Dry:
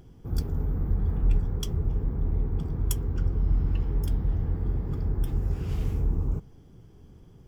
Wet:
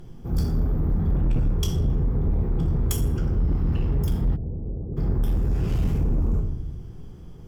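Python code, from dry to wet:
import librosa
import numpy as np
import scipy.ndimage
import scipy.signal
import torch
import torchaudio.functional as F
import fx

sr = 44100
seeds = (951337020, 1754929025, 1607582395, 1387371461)

y = fx.room_shoebox(x, sr, seeds[0], volume_m3=200.0, walls='mixed', distance_m=0.84)
y = fx.fold_sine(y, sr, drive_db=9, ceiling_db=-9.0)
y = fx.ladder_lowpass(y, sr, hz=650.0, resonance_pct=35, at=(4.35, 4.96), fade=0.02)
y = y * librosa.db_to_amplitude(-8.0)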